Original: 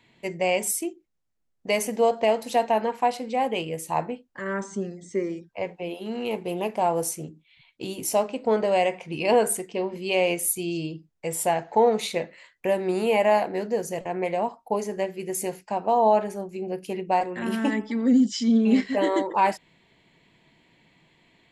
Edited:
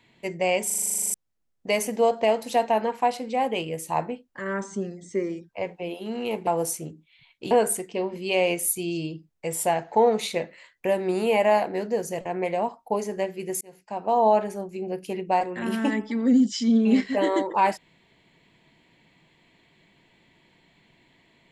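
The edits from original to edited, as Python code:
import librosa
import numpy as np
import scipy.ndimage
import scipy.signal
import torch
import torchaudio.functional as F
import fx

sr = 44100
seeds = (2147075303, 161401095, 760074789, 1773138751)

y = fx.edit(x, sr, fx.stutter_over(start_s=0.66, slice_s=0.04, count=12),
    fx.cut(start_s=6.47, length_s=0.38),
    fx.cut(start_s=7.89, length_s=1.42),
    fx.fade_in_span(start_s=15.41, length_s=0.57), tone=tone)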